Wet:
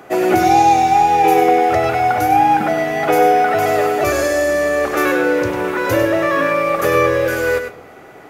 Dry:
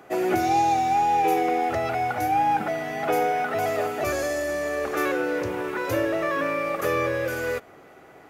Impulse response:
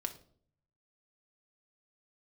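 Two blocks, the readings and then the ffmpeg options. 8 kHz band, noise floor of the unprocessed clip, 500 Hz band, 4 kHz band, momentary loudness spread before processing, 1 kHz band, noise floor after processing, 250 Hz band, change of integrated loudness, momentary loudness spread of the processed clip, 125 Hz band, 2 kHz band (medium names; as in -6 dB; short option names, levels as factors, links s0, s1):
+9.0 dB, -49 dBFS, +10.0 dB, +9.0 dB, 6 LU, +9.5 dB, -40 dBFS, +9.5 dB, +9.5 dB, 6 LU, +9.0 dB, +9.5 dB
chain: -filter_complex "[0:a]asplit=2[s0][s1];[1:a]atrim=start_sample=2205,adelay=99[s2];[s1][s2]afir=irnorm=-1:irlink=0,volume=0.422[s3];[s0][s3]amix=inputs=2:normalize=0,volume=2.66"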